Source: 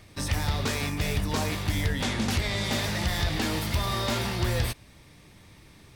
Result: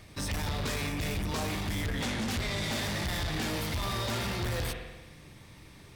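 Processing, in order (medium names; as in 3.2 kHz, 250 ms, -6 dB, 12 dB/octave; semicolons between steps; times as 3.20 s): spring tank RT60 1.1 s, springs 45 ms, chirp 80 ms, DRR 6.5 dB; saturation -28.5 dBFS, distortion -9 dB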